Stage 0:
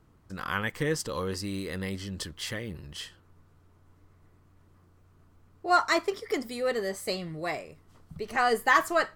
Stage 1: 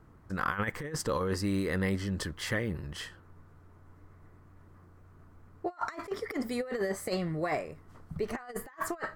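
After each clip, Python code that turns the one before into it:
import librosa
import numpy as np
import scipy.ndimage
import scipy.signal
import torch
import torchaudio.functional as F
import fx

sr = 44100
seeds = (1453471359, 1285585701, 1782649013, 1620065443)

y = fx.high_shelf_res(x, sr, hz=2300.0, db=-6.0, q=1.5)
y = fx.over_compress(y, sr, threshold_db=-32.0, ratio=-0.5)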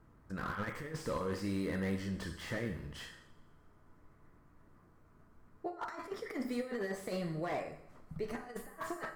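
y = fx.rev_double_slope(x, sr, seeds[0], early_s=0.68, late_s=2.4, knee_db=-25, drr_db=5.0)
y = fx.slew_limit(y, sr, full_power_hz=40.0)
y = y * librosa.db_to_amplitude(-6.0)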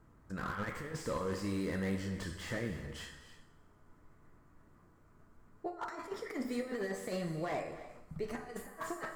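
y = fx.peak_eq(x, sr, hz=7300.0, db=5.0, octaves=0.34)
y = fx.rev_gated(y, sr, seeds[1], gate_ms=340, shape='rising', drr_db=12.0)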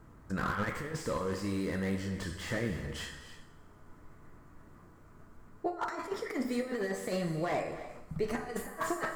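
y = fx.rider(x, sr, range_db=10, speed_s=2.0)
y = y * librosa.db_to_amplitude(3.5)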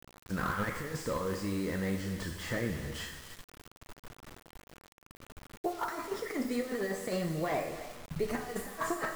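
y = fx.quant_dither(x, sr, seeds[2], bits=8, dither='none')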